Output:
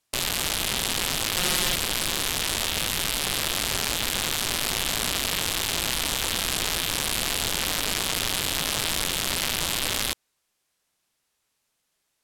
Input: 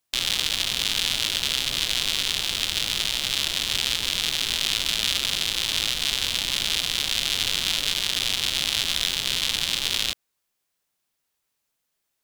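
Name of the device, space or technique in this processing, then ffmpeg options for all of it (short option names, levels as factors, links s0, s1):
overflowing digital effects unit: -filter_complex "[0:a]aeval=exprs='(mod(5.96*val(0)+1,2)-1)/5.96':c=same,lowpass=12000,asettb=1/sr,asplit=3[s0][s1][s2];[s0]atrim=end=1.364[s3];[s1]atrim=start=1.36:end=1.76,asetpts=PTS-STARTPTS,afade=t=in:d=0.004:c=qsin,afade=t=out:st=0.396:d=0.004:c=qsin,aecho=1:1:5.6:0.94,atrim=end_sample=17640[s4];[s2]atrim=start=1.756[s5];[s3][s4]acrossfade=d=0.004:c1=hsin:c2=qsin[s6];[s6][s5]acrossfade=d=0.004:c1=qsin:c2=hsin,volume=1.68"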